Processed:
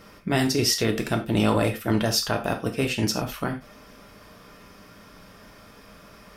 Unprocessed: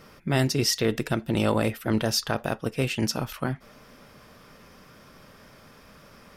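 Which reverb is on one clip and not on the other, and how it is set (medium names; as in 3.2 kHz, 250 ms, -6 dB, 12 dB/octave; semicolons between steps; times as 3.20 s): gated-style reverb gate 120 ms falling, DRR 4 dB; trim +1 dB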